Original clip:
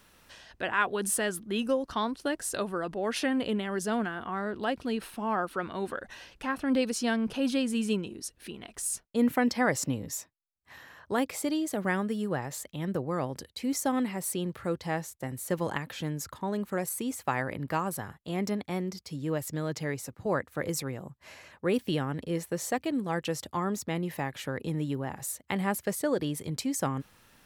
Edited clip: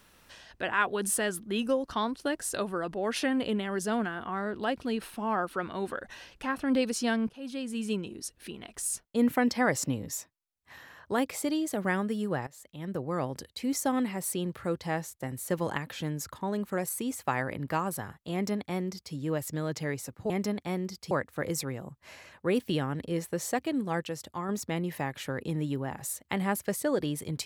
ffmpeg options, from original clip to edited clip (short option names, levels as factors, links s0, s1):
-filter_complex "[0:a]asplit=7[s0][s1][s2][s3][s4][s5][s6];[s0]atrim=end=7.29,asetpts=PTS-STARTPTS,afade=t=out:st=7.286:d=0.004:c=hsin:silence=0.105925[s7];[s1]atrim=start=7.29:end=12.47,asetpts=PTS-STARTPTS,afade=t=in:d=0.88:silence=0.105925,afade=t=out:st=5.176:d=0.004:c=hsin:silence=0.112202[s8];[s2]atrim=start=12.47:end=20.302,asetpts=PTS-STARTPTS,afade=t=in:d=0.71:silence=0.112202[s9];[s3]atrim=start=18.328:end=19.142[s10];[s4]atrim=start=20.298:end=23.222[s11];[s5]atrim=start=23.218:end=23.682,asetpts=PTS-STARTPTS,volume=0.596[s12];[s6]atrim=start=23.678[s13];[s7][s8][s9]concat=n=3:v=0:a=1[s14];[s14][s10]acrossfade=d=0.004:c1=hsin:c2=hsin[s15];[s15][s11]acrossfade=d=0.004:c1=hsin:c2=hsin[s16];[s16][s12]acrossfade=d=0.004:c1=hsin:c2=hsin[s17];[s17][s13]acrossfade=d=0.004:c1=hsin:c2=hsin"